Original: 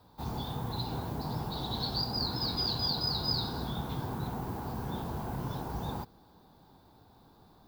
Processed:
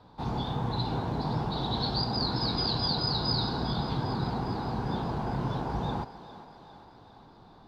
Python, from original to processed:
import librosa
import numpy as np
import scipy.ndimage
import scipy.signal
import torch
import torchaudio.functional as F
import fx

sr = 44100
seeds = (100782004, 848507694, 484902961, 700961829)

y = scipy.signal.sosfilt(scipy.signal.butter(2, 4100.0, 'lowpass', fs=sr, output='sos'), x)
y = fx.peak_eq(y, sr, hz=76.0, db=-12.5, octaves=0.21)
y = fx.echo_thinned(y, sr, ms=404, feedback_pct=63, hz=330.0, wet_db=-13.5)
y = F.gain(torch.from_numpy(y), 5.5).numpy()